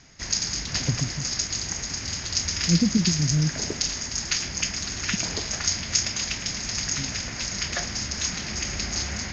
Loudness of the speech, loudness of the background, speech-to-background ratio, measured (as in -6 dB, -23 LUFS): -26.5 LUFS, -26.5 LUFS, 0.0 dB